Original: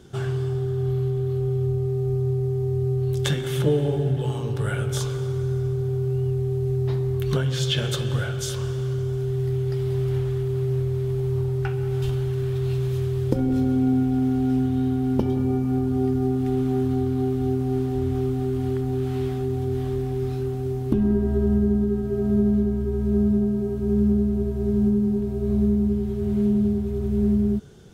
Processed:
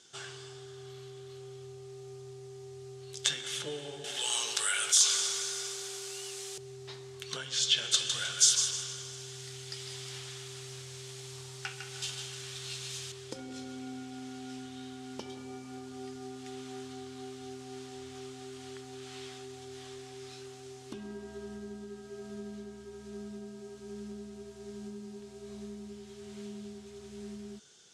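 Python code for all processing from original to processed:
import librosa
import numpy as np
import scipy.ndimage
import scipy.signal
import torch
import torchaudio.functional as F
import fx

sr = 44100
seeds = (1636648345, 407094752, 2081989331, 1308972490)

y = fx.chain(x, sr, fx.highpass(hz=480.0, slope=6),
    fx.tilt_eq(slope=3.0),
    fx.env_flatten(amount_pct=70), at=(4.04, 6.58))
y = fx.chain(y, sr, fx.high_shelf(hz=2700.0, db=8.5),
    fx.echo_feedback(ms=154, feedback_pct=35, wet_db=-7.0), at=(7.94, 13.12))
y = scipy.signal.sosfilt(scipy.signal.butter(4, 7500.0, 'lowpass', fs=sr, output='sos'), y)
y = np.diff(y, prepend=0.0)
y = y * 10.0 ** (6.5 / 20.0)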